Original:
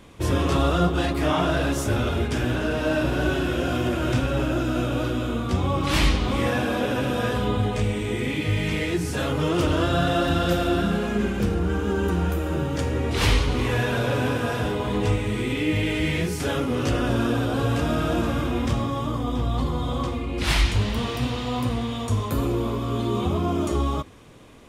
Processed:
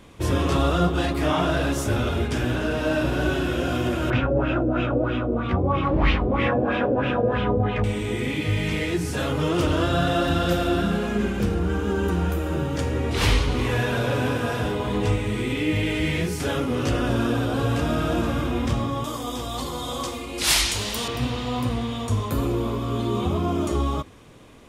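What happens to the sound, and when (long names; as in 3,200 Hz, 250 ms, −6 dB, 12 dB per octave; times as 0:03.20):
0:04.10–0:07.84: auto-filter low-pass sine 3.1 Hz 470–2,800 Hz
0:19.04–0:21.08: bass and treble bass −11 dB, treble +14 dB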